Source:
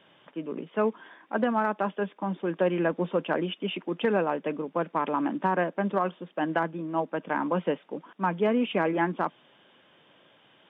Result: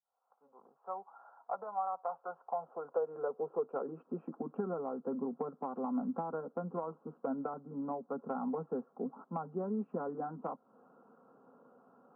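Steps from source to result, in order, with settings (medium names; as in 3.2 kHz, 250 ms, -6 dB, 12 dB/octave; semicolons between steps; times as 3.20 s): fade-in on the opening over 2.55 s; elliptic low-pass 1.5 kHz, stop band 40 dB; peaking EQ 400 Hz -10 dB 0.31 oct; compression, threshold -36 dBFS, peak gain reduction 13.5 dB; tape speed -12%; comb of notches 300 Hz; high-pass sweep 750 Hz -> 260 Hz, 2.32–4.43 s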